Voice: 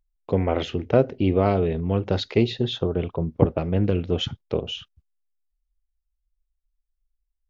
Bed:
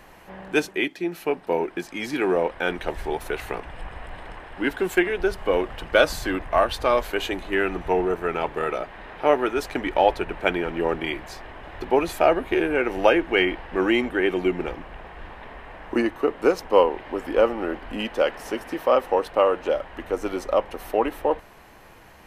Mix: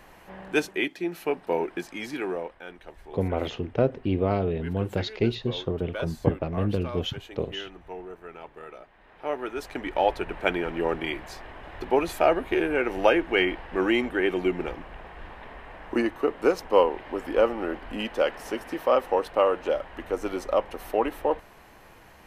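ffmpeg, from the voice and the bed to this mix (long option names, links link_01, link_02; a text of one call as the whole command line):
ffmpeg -i stem1.wav -i stem2.wav -filter_complex "[0:a]adelay=2850,volume=-4.5dB[link_01];[1:a]volume=12dB,afade=type=out:start_time=1.79:duration=0.82:silence=0.188365,afade=type=in:start_time=8.99:duration=1.4:silence=0.188365[link_02];[link_01][link_02]amix=inputs=2:normalize=0" out.wav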